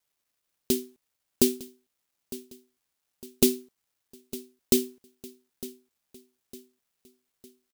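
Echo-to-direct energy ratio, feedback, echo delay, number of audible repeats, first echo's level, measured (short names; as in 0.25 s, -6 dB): -16.0 dB, 45%, 0.906 s, 3, -17.0 dB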